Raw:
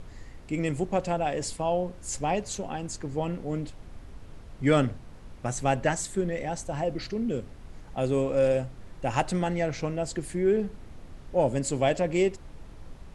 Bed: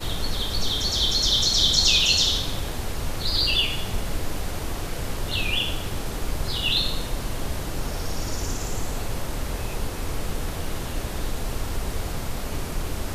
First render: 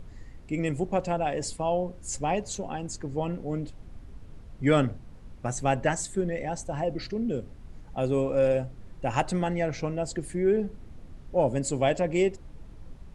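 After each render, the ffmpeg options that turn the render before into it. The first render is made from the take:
ffmpeg -i in.wav -af "afftdn=noise_reduction=6:noise_floor=-46" out.wav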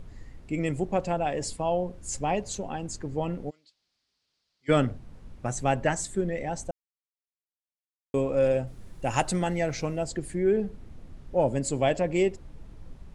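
ffmpeg -i in.wav -filter_complex "[0:a]asplit=3[link_01][link_02][link_03];[link_01]afade=type=out:start_time=3.49:duration=0.02[link_04];[link_02]bandpass=frequency=4600:width_type=q:width=3.8,afade=type=in:start_time=3.49:duration=0.02,afade=type=out:start_time=4.68:duration=0.02[link_05];[link_03]afade=type=in:start_time=4.68:duration=0.02[link_06];[link_04][link_05][link_06]amix=inputs=3:normalize=0,asettb=1/sr,asplit=3[link_07][link_08][link_09];[link_07]atrim=end=8.674[link_10];[link_08]atrim=start=8.67:end=10.04,asetpts=PTS-STARTPTS,afade=type=in:duration=0.004:curve=qsin,afade=type=out:start_time=1.366:duration=0.004:curve=qsin,aemphasis=mode=production:type=50kf[link_11];[link_09]atrim=start=10.036[link_12];[link_10][link_11]acrossfade=duration=0.004:curve1=hsin:curve2=qsin[link_13];[link_13][link_12]acrossfade=duration=0.004:curve1=qsin:curve2=hsin,asplit=3[link_14][link_15][link_16];[link_14]atrim=end=6.71,asetpts=PTS-STARTPTS,afade=type=out:start_time=6.706:duration=0.004:curve=hsin[link_17];[link_15]atrim=start=6.71:end=8.14,asetpts=PTS-STARTPTS,volume=0[link_18];[link_16]atrim=start=8.14,asetpts=PTS-STARTPTS,afade=type=in:duration=0.004:curve=hsin[link_19];[link_17][link_18][link_19]concat=n=3:v=0:a=1" out.wav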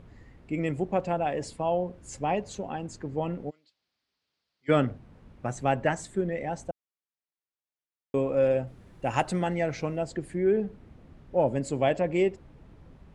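ffmpeg -i in.wav -af "highpass=frequency=91:poles=1,bass=frequency=250:gain=0,treble=frequency=4000:gain=-10" out.wav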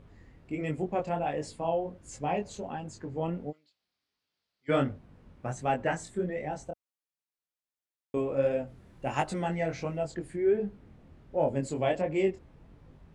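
ffmpeg -i in.wav -af "flanger=delay=19.5:depth=5.5:speed=1.4" out.wav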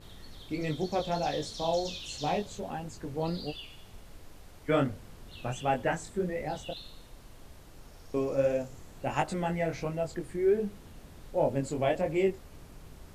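ffmpeg -i in.wav -i bed.wav -filter_complex "[1:a]volume=-22.5dB[link_01];[0:a][link_01]amix=inputs=2:normalize=0" out.wav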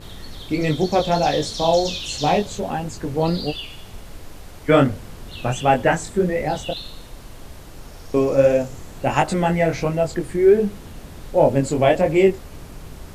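ffmpeg -i in.wav -af "volume=12dB,alimiter=limit=-1dB:level=0:latency=1" out.wav

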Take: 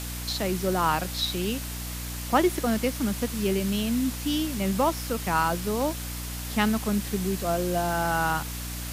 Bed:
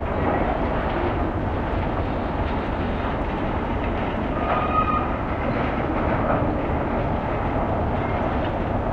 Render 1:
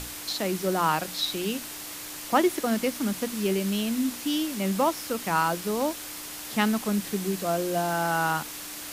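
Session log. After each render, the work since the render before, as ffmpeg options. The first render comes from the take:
ffmpeg -i in.wav -af "bandreject=frequency=60:width_type=h:width=6,bandreject=frequency=120:width_type=h:width=6,bandreject=frequency=180:width_type=h:width=6,bandreject=frequency=240:width_type=h:width=6" out.wav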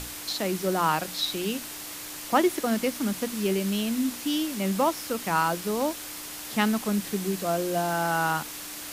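ffmpeg -i in.wav -af anull out.wav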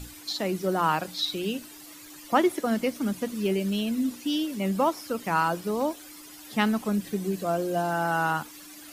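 ffmpeg -i in.wav -af "afftdn=noise_reduction=13:noise_floor=-39" out.wav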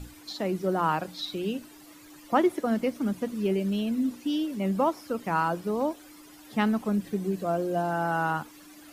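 ffmpeg -i in.wav -af "highshelf=frequency=2100:gain=-8.5" out.wav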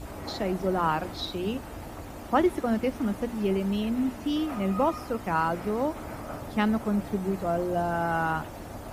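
ffmpeg -i in.wav -i bed.wav -filter_complex "[1:a]volume=-16.5dB[link_01];[0:a][link_01]amix=inputs=2:normalize=0" out.wav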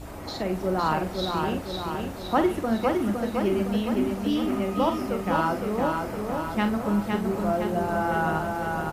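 ffmpeg -i in.wav -filter_complex "[0:a]asplit=2[link_01][link_02];[link_02]adelay=44,volume=-8.5dB[link_03];[link_01][link_03]amix=inputs=2:normalize=0,aecho=1:1:511|1022|1533|2044|2555|3066|3577|4088:0.631|0.366|0.212|0.123|0.0714|0.0414|0.024|0.0139" out.wav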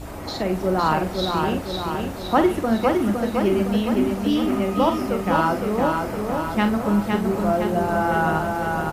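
ffmpeg -i in.wav -af "volume=4.5dB" out.wav

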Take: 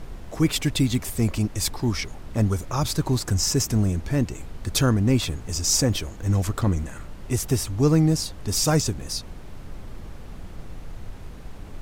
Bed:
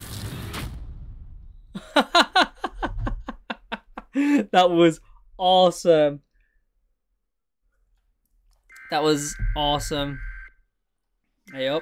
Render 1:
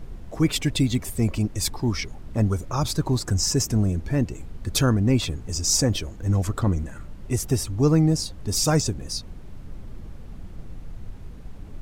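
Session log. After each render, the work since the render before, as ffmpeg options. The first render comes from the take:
ffmpeg -i in.wav -af "afftdn=noise_reduction=7:noise_floor=-39" out.wav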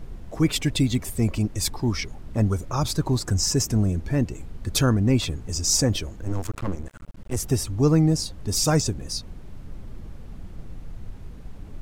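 ffmpeg -i in.wav -filter_complex "[0:a]asettb=1/sr,asplit=3[link_01][link_02][link_03];[link_01]atrim=end=6.214[link_04];[link_02]atrim=start=6.21:end=7.37,asetpts=PTS-STARTPTS,afade=type=in:duration=0.004:curve=qsin,afade=type=out:start_time=1.156:duration=0.004:curve=qsin,aeval=exprs='max(val(0),0)':channel_layout=same[link_05];[link_03]atrim=start=7.366[link_06];[link_04][link_05]acrossfade=duration=0.004:curve1=hsin:curve2=qsin[link_07];[link_07][link_06]acrossfade=duration=0.004:curve1=qsin:curve2=hsin" out.wav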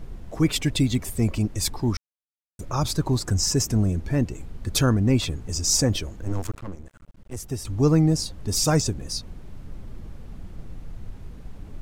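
ffmpeg -i in.wav -filter_complex "[0:a]asplit=5[link_01][link_02][link_03][link_04][link_05];[link_01]atrim=end=1.97,asetpts=PTS-STARTPTS,afade=type=out:start_time=1.966:duration=0.004:curve=hsin[link_06];[link_02]atrim=start=1.97:end=2.59,asetpts=PTS-STARTPTS,volume=0[link_07];[link_03]atrim=start=2.59:end=6.572,asetpts=PTS-STARTPTS,afade=type=in:duration=0.004:curve=hsin[link_08];[link_04]atrim=start=6.568:end=7.652,asetpts=PTS-STARTPTS,volume=-7.5dB[link_09];[link_05]atrim=start=7.648[link_10];[link_06][link_07][link_08]concat=n=3:v=0:a=1[link_11];[link_11][link_09]acrossfade=duration=0.004:curve1=hsin:curve2=hsin[link_12];[link_12][link_10]acrossfade=duration=0.004:curve1=hsin:curve2=hsin" out.wav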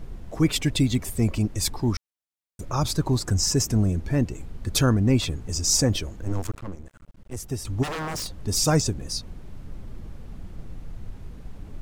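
ffmpeg -i in.wav -filter_complex "[0:a]asplit=3[link_01][link_02][link_03];[link_01]afade=type=out:start_time=7.82:duration=0.02[link_04];[link_02]aeval=exprs='0.0531*(abs(mod(val(0)/0.0531+3,4)-2)-1)':channel_layout=same,afade=type=in:start_time=7.82:duration=0.02,afade=type=out:start_time=8.34:duration=0.02[link_05];[link_03]afade=type=in:start_time=8.34:duration=0.02[link_06];[link_04][link_05][link_06]amix=inputs=3:normalize=0" out.wav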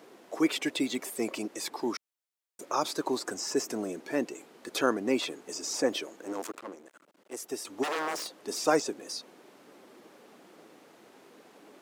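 ffmpeg -i in.wav -filter_complex "[0:a]highpass=frequency=320:width=0.5412,highpass=frequency=320:width=1.3066,acrossover=split=2800[link_01][link_02];[link_02]acompressor=threshold=-35dB:ratio=4:attack=1:release=60[link_03];[link_01][link_03]amix=inputs=2:normalize=0" out.wav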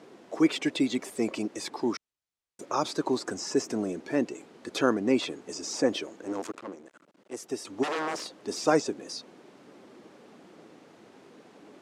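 ffmpeg -i in.wav -af "lowpass=8000,lowshelf=frequency=210:gain=11.5" out.wav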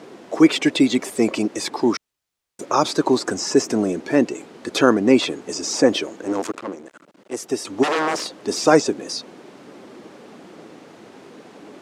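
ffmpeg -i in.wav -af "volume=10dB,alimiter=limit=-2dB:level=0:latency=1" out.wav

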